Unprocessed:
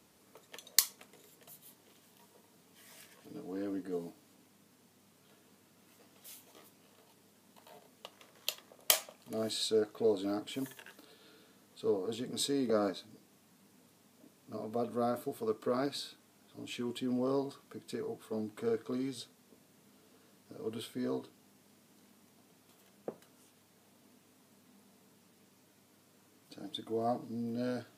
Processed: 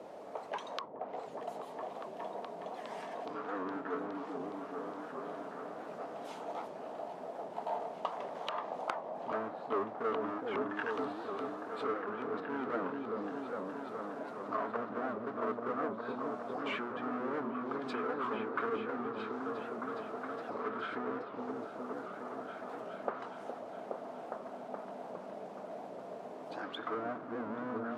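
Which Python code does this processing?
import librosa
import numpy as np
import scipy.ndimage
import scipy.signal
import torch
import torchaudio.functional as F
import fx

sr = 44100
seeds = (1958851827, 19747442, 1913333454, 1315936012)

y = fx.env_lowpass_down(x, sr, base_hz=320.0, full_db=-33.0)
y = fx.power_curve(y, sr, exponent=0.7)
y = fx.auto_wah(y, sr, base_hz=520.0, top_hz=1300.0, q=3.8, full_db=-34.5, direction='up')
y = fx.echo_opening(y, sr, ms=415, hz=400, octaves=1, feedback_pct=70, wet_db=0)
y = fx.record_warp(y, sr, rpm=78.0, depth_cents=160.0)
y = y * librosa.db_to_amplitude(13.0)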